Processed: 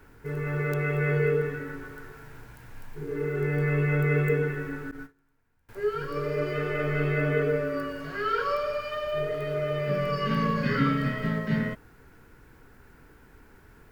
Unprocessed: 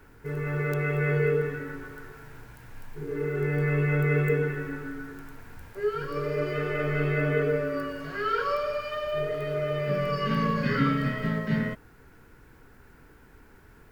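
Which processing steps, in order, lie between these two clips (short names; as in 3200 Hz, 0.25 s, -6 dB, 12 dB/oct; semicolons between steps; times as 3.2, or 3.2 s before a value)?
4.91–5.69 gate -36 dBFS, range -27 dB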